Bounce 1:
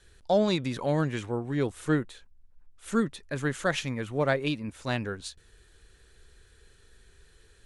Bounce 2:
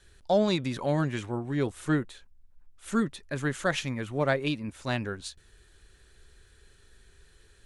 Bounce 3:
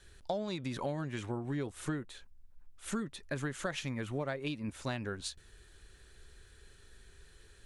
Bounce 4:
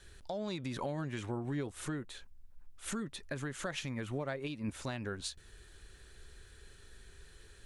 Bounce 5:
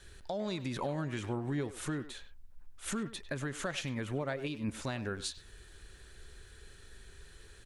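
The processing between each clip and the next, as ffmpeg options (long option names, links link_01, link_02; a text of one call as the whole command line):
ffmpeg -i in.wav -af "bandreject=frequency=470:width=12" out.wav
ffmpeg -i in.wav -af "acompressor=threshold=-32dB:ratio=16" out.wav
ffmpeg -i in.wav -af "alimiter=level_in=5.5dB:limit=-24dB:level=0:latency=1:release=224,volume=-5.5dB,volume=2dB" out.wav
ffmpeg -i in.wav -filter_complex "[0:a]asplit=2[link_01][link_02];[link_02]adelay=100,highpass=300,lowpass=3400,asoftclip=type=hard:threshold=-37dB,volume=-11dB[link_03];[link_01][link_03]amix=inputs=2:normalize=0,volume=2dB" out.wav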